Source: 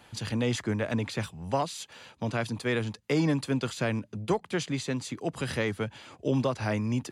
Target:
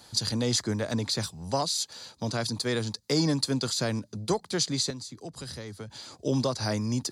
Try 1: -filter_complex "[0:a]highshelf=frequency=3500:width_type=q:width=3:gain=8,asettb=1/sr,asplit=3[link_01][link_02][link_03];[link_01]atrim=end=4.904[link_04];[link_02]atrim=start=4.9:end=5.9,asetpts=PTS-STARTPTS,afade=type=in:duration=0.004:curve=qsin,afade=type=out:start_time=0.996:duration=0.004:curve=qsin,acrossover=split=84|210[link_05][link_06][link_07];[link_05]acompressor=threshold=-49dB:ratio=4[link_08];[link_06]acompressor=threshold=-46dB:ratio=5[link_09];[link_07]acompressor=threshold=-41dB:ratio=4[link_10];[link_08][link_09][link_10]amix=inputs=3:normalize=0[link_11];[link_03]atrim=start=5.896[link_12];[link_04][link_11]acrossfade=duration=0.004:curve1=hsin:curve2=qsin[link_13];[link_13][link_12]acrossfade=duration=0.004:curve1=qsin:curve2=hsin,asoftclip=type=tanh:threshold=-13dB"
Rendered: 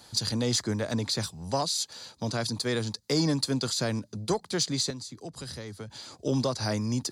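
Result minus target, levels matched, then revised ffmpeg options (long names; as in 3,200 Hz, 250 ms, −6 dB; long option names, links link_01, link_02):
soft clipping: distortion +20 dB
-filter_complex "[0:a]highshelf=frequency=3500:width_type=q:width=3:gain=8,asettb=1/sr,asplit=3[link_01][link_02][link_03];[link_01]atrim=end=4.904[link_04];[link_02]atrim=start=4.9:end=5.9,asetpts=PTS-STARTPTS,afade=type=in:duration=0.004:curve=qsin,afade=type=out:start_time=0.996:duration=0.004:curve=qsin,acrossover=split=84|210[link_05][link_06][link_07];[link_05]acompressor=threshold=-49dB:ratio=4[link_08];[link_06]acompressor=threshold=-46dB:ratio=5[link_09];[link_07]acompressor=threshold=-41dB:ratio=4[link_10];[link_08][link_09][link_10]amix=inputs=3:normalize=0[link_11];[link_03]atrim=start=5.896[link_12];[link_04][link_11]acrossfade=duration=0.004:curve1=hsin:curve2=qsin[link_13];[link_13][link_12]acrossfade=duration=0.004:curve1=qsin:curve2=hsin,asoftclip=type=tanh:threshold=-2.5dB"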